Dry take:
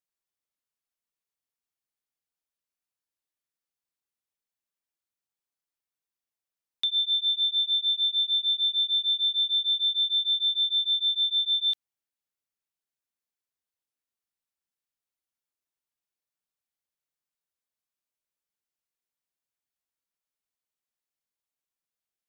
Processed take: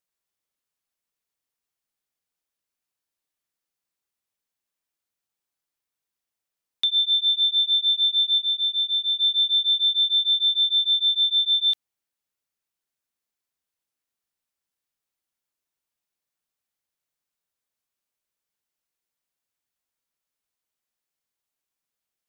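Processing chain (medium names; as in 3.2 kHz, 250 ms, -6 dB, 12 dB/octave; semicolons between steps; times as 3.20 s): 8.38–9.20 s: low-pass 3.5 kHz 6 dB/octave; trim +4.5 dB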